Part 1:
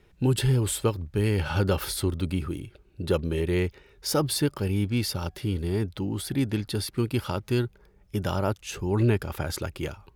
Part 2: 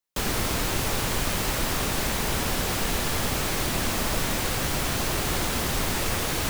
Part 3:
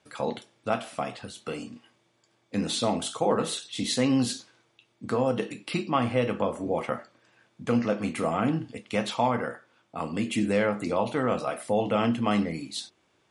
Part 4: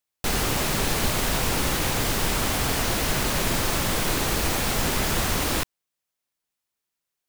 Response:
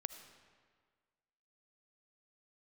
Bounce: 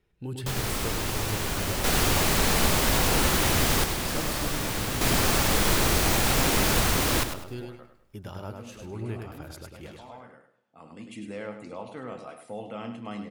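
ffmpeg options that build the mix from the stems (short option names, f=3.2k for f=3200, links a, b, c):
-filter_complex "[0:a]volume=-13dB,asplit=3[a][b][c];[b]volume=-4.5dB[d];[1:a]adelay=300,volume=-4.5dB,asplit=2[e][f];[f]volume=-5dB[g];[2:a]adelay=800,volume=-13.5dB,asplit=3[h][i][j];[i]volume=-17dB[k];[j]volume=-8.5dB[l];[3:a]adelay=1600,volume=-2.5dB,asplit=3[m][n][o];[m]atrim=end=3.84,asetpts=PTS-STARTPTS,afade=t=out:st=3.836:d=0.004:c=hsin[p];[n]atrim=start=3.84:end=5.01,asetpts=PTS-STARTPTS,volume=0[q];[o]atrim=start=5.01,asetpts=PTS-STARTPTS,afade=t=in:d=0.004:c=hsin[r];[p][q][r]concat=n=3:v=0:a=1,asplit=3[s][t][u];[t]volume=-7.5dB[v];[u]volume=-7dB[w];[c]apad=whole_len=622140[x];[h][x]sidechaincompress=threshold=-56dB:ratio=8:attack=16:release=1200[y];[4:a]atrim=start_sample=2205[z];[k][v]amix=inputs=2:normalize=0[aa];[aa][z]afir=irnorm=-1:irlink=0[ab];[d][g][l][w]amix=inputs=4:normalize=0,aecho=0:1:102|204|306|408:1|0.29|0.0841|0.0244[ac];[a][e][y][s][ab][ac]amix=inputs=6:normalize=0"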